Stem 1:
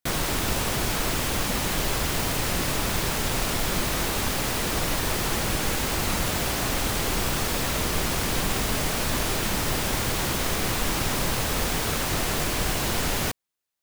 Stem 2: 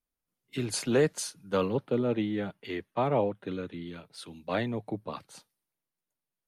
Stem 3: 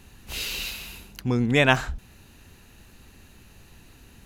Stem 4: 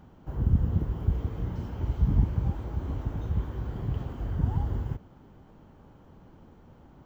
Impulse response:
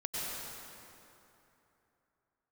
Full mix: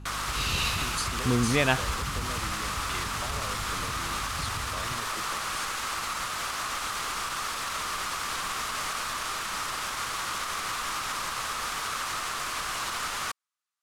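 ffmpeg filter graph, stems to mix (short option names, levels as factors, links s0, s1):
-filter_complex "[0:a]tiltshelf=f=730:g=-8,volume=0.299[s0];[1:a]acrossover=split=130[s1][s2];[s2]acompressor=threshold=0.0178:ratio=6[s3];[s1][s3]amix=inputs=2:normalize=0,tiltshelf=f=970:g=-8,adelay=250,volume=0.891[s4];[2:a]dynaudnorm=f=320:g=3:m=3.55,aeval=exprs='val(0)+0.0178*(sin(2*PI*50*n/s)+sin(2*PI*2*50*n/s)/2+sin(2*PI*3*50*n/s)/3+sin(2*PI*4*50*n/s)/4+sin(2*PI*5*50*n/s)/5)':c=same,volume=0.447[s5];[3:a]volume=0.422[s6];[s0][s6]amix=inputs=2:normalize=0,equalizer=f=1200:t=o:w=0.63:g=13.5,alimiter=limit=0.0841:level=0:latency=1,volume=1[s7];[s4][s5][s7]amix=inputs=3:normalize=0,lowpass=10000"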